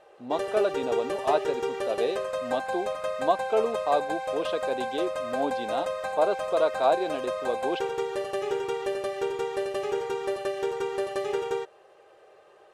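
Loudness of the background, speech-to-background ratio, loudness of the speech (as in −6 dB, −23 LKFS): −31.0 LKFS, 1.5 dB, −29.5 LKFS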